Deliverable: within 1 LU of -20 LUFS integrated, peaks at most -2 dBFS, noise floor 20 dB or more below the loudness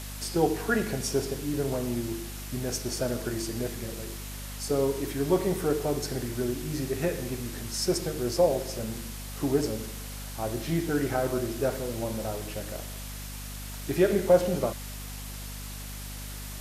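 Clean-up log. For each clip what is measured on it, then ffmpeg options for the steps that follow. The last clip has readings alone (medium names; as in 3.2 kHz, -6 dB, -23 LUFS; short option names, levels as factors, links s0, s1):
hum 50 Hz; highest harmonic 250 Hz; hum level -37 dBFS; noise floor -39 dBFS; noise floor target -50 dBFS; loudness -30.0 LUFS; peak level -9.5 dBFS; loudness target -20.0 LUFS
-> -af "bandreject=f=50:t=h:w=6,bandreject=f=100:t=h:w=6,bandreject=f=150:t=h:w=6,bandreject=f=200:t=h:w=6,bandreject=f=250:t=h:w=6"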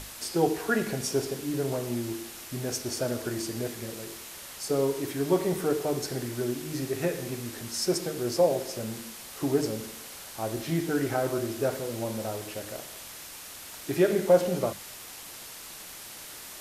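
hum not found; noise floor -44 dBFS; noise floor target -50 dBFS
-> -af "afftdn=nr=6:nf=-44"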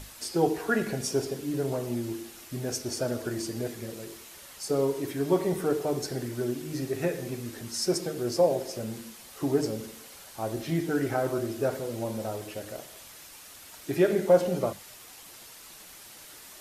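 noise floor -49 dBFS; noise floor target -50 dBFS
-> -af "afftdn=nr=6:nf=-49"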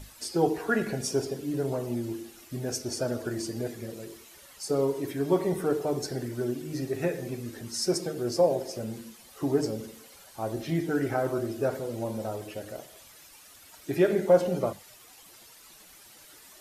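noise floor -53 dBFS; loudness -29.5 LUFS; peak level -10.0 dBFS; loudness target -20.0 LUFS
-> -af "volume=2.99,alimiter=limit=0.794:level=0:latency=1"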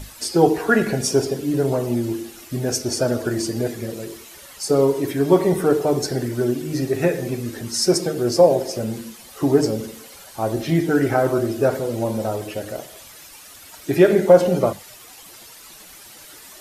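loudness -20.5 LUFS; peak level -2.0 dBFS; noise floor -43 dBFS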